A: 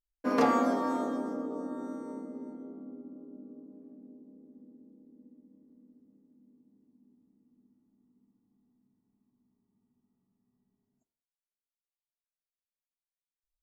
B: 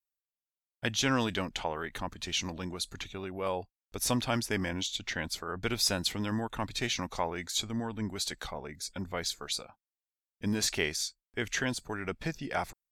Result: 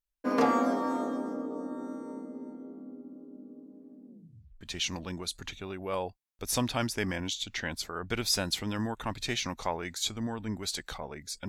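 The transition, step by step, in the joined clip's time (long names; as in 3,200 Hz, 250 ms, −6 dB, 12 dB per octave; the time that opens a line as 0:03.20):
A
0:04.07: tape stop 0.54 s
0:04.61: continue with B from 0:02.14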